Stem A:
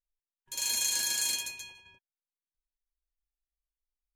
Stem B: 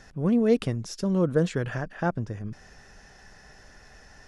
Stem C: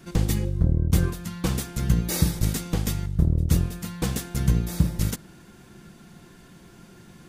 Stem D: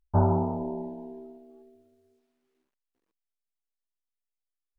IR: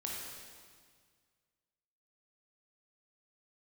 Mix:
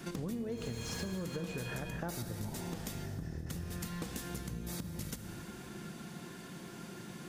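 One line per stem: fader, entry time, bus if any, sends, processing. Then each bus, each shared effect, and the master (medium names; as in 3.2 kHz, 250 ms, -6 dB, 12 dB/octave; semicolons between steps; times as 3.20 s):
-6.5 dB, 0.00 s, bus A, no send, overdrive pedal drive 33 dB, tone 1.2 kHz, clips at -15 dBFS
-5.0 dB, 0.00 s, bus A, send -8.5 dB, none
+2.0 dB, 0.00 s, bus B, send -16 dB, compression 3:1, threshold -27 dBFS, peak gain reduction 10.5 dB
-9.5 dB, 2.30 s, bus B, no send, none
bus A: 0.0 dB, gate with hold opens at -46 dBFS; compression, threshold -30 dBFS, peak gain reduction 9.5 dB
bus B: 0.0 dB, high-pass 130 Hz 12 dB/octave; compression, threshold -37 dBFS, peak gain reduction 14 dB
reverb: on, RT60 1.8 s, pre-delay 17 ms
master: compression 6:1, threshold -36 dBFS, peak gain reduction 12 dB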